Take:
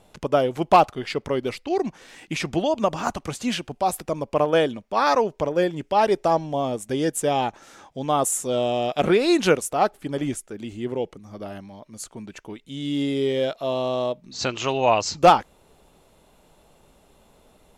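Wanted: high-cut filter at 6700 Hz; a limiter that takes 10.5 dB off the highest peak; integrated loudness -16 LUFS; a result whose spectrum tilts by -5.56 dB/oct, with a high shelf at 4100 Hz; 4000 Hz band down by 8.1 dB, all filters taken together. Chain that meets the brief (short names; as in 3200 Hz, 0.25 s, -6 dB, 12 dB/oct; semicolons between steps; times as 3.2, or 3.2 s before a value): LPF 6700 Hz; bell 4000 Hz -7 dB; high shelf 4100 Hz -6.5 dB; gain +11.5 dB; limiter -4.5 dBFS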